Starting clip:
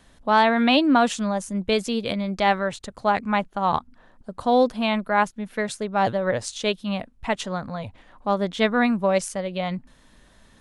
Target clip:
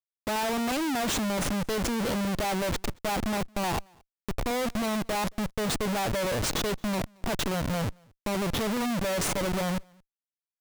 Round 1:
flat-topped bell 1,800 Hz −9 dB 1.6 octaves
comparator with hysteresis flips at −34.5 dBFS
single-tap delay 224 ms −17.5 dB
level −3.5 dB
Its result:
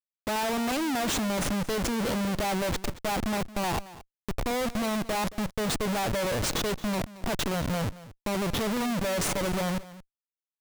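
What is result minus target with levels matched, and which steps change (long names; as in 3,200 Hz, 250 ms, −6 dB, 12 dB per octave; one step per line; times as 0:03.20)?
echo-to-direct +12 dB
change: single-tap delay 224 ms −29.5 dB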